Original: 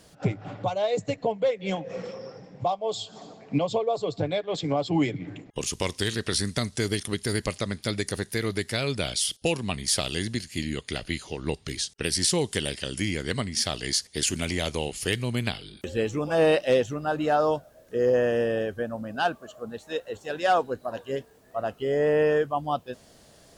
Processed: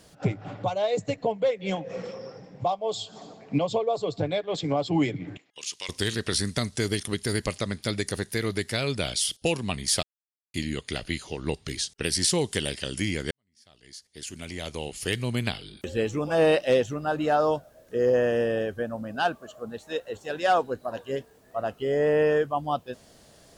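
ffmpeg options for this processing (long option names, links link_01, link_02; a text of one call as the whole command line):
ffmpeg -i in.wav -filter_complex "[0:a]asettb=1/sr,asplit=3[link_01][link_02][link_03];[link_01]atrim=end=5.374[link_04];[link_02]atrim=start=5.37:end=5.89,asetpts=PTS-STARTPTS,afade=type=in:duration=0.004:curve=qsin,afade=type=out:start_time=0.516:duration=0.004:curve=qsin,bandpass=frequency=3900:width_type=q:width=0.97[link_05];[link_03]atrim=start=5.886[link_06];[link_04][link_05]acrossfade=duration=0.004:curve1=hsin:curve2=qsin[link_07];[link_07][link_06]acrossfade=duration=0.004:curve1=qsin:curve2=hsin,asplit=4[link_08][link_09][link_10][link_11];[link_08]atrim=end=10.03,asetpts=PTS-STARTPTS,afade=type=out:start_time=10.026:duration=0.004:curve=hsin[link_12];[link_09]atrim=start=10.03:end=10.54,asetpts=PTS-STARTPTS,volume=0[link_13];[link_10]atrim=start=10.54:end=13.31,asetpts=PTS-STARTPTS,afade=type=in:duration=0.004:curve=hsin,afade=type=out:start_time=2.766:duration=0.004:curve=hsin[link_14];[link_11]atrim=start=13.31,asetpts=PTS-STARTPTS,afade=type=in:duration=1.95:curve=qua[link_15];[link_12][link_13][link_14][link_15]concat=n=4:v=0:a=1" out.wav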